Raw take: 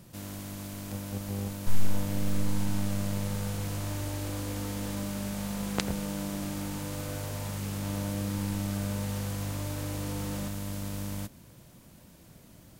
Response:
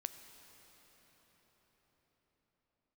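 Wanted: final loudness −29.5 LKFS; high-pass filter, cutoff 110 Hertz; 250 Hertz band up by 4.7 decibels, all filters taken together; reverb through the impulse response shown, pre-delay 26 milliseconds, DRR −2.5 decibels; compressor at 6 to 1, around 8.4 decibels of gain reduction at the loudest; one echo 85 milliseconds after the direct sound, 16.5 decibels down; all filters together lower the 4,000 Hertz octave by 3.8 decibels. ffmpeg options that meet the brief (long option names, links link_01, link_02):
-filter_complex "[0:a]highpass=110,equalizer=frequency=250:width_type=o:gain=7,equalizer=frequency=4000:width_type=o:gain=-5,acompressor=threshold=-32dB:ratio=6,aecho=1:1:85:0.15,asplit=2[link_01][link_02];[1:a]atrim=start_sample=2205,adelay=26[link_03];[link_02][link_03]afir=irnorm=-1:irlink=0,volume=5dB[link_04];[link_01][link_04]amix=inputs=2:normalize=0,volume=0.5dB"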